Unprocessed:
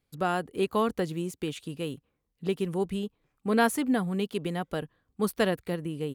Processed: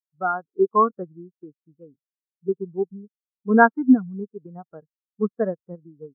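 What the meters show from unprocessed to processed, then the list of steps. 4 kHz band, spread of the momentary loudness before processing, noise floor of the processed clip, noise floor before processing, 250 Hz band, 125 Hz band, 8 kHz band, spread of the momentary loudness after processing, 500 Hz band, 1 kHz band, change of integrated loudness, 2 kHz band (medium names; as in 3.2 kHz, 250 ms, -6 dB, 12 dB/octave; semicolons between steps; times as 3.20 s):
under -40 dB, 11 LU, under -85 dBFS, -79 dBFS, +6.0 dB, -3.5 dB, under -40 dB, 21 LU, +4.5 dB, +9.0 dB, +8.0 dB, +7.5 dB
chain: resonant low-pass 1.4 kHz, resonance Q 2.2; in parallel at -9.5 dB: bit crusher 4-bit; on the sum: spectral contrast expander 2.5:1; trim +4 dB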